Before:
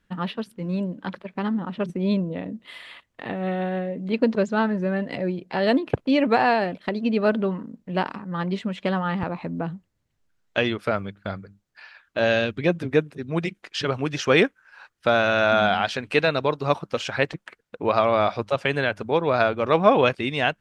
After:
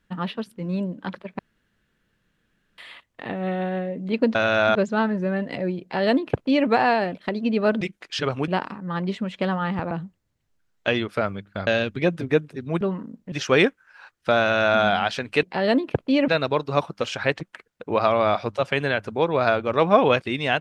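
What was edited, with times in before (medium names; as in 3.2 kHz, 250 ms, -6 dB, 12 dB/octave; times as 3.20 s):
1.39–2.78 s: room tone
5.42–6.27 s: copy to 16.21 s
7.41–7.92 s: swap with 13.43–14.10 s
9.35–9.61 s: delete
11.37–12.29 s: delete
15.19–15.59 s: copy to 4.35 s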